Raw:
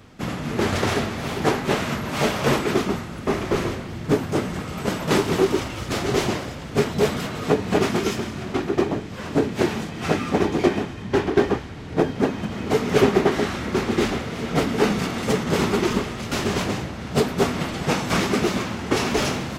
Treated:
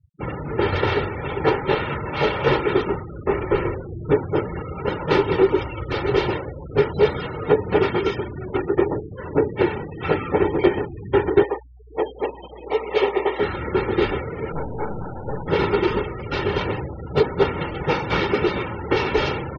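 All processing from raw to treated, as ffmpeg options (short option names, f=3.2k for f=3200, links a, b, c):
-filter_complex "[0:a]asettb=1/sr,asplit=3[a][b][c];[a]atrim=end=11.434[d];[b]atrim=start=11.43:end=13.4,asetpts=PTS-STARTPTS,afade=t=in:d=0.004:c=qsin,afade=t=out:st=1.966:d=0.004:c=qsin,highpass=510,equalizer=f=1.5k:t=o:w=0.29:g=-11.5,aeval=exprs='val(0)+0.00501*(sin(2*PI*60*n/s)+sin(2*PI*2*60*n/s)/2+sin(2*PI*3*60*n/s)/3+sin(2*PI*4*60*n/s)/4+sin(2*PI*5*60*n/s)/5)':c=same[e];[c]atrim=start=13.396[f];[d][e]acrossfade=d=0.004:c1=hsin:c2=qsin[g];[g][f]acrossfade=d=0.004:c1=qsin:c2=hsin,asettb=1/sr,asplit=3[h][i][j];[h]atrim=end=14.524[k];[i]atrim=start=14.52:end=15.48,asetpts=PTS-STARTPTS,afade=t=in:d=0.004:c=qsin,afade=t=out:st=0.956:d=0.004:c=qsin,lowpass=1.3k,aecho=1:1:1.3:0.51,atrim=end_sample=42336,aeval=exprs='(tanh(15.8*val(0)+0.7)-tanh(0.7))/15.8':c=same[l];[j]atrim=start=15.476[m];[k][l]acrossfade=d=0.004:c1=hsin:c2=qsin[n];[n][m]acrossfade=d=0.004:c1=qsin:c2=hsin,afftfilt=real='re*gte(hypot(re,im),0.0355)':imag='im*gte(hypot(re,im),0.0355)':win_size=1024:overlap=0.75,lowpass=f=4.1k:w=0.5412,lowpass=f=4.1k:w=1.3066,aecho=1:1:2.2:0.66"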